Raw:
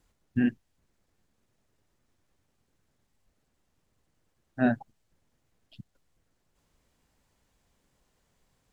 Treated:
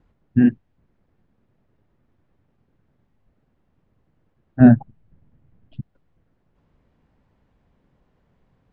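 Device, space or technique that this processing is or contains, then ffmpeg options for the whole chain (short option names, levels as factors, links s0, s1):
phone in a pocket: -filter_complex "[0:a]lowpass=3100,equalizer=f=150:t=o:w=2.2:g=5,highshelf=f=2000:g=-9,asettb=1/sr,asplit=3[s0][s1][s2];[s0]atrim=end=4.604[s3];[s1]atrim=start=4.6:end=5.8,asetpts=PTS-STARTPTS,afade=t=in:d=0.004:c=qsin,afade=t=out:st=1.196:d=0.004:c=qsin,bass=f=250:g=9,treble=f=4000:g=-5[s4];[s2]atrim=start=5.796[s5];[s3][s4]acrossfade=d=0.004:c1=hsin:c2=qsin[s6];[s6][s5]acrossfade=d=0.004:c1=qsin:c2=hsin,volume=2.24"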